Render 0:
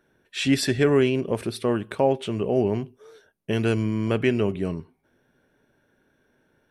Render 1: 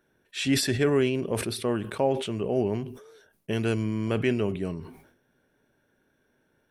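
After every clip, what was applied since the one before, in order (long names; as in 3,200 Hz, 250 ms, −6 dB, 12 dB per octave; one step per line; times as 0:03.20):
high-shelf EQ 7,000 Hz +5 dB
level that may fall only so fast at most 83 dB per second
level −4 dB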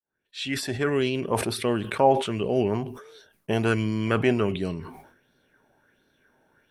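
fade in at the beginning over 1.49 s
auto-filter bell 1.4 Hz 740–4,300 Hz +12 dB
level +2 dB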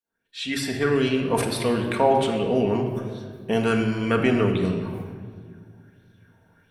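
rectangular room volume 2,900 cubic metres, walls mixed, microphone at 1.7 metres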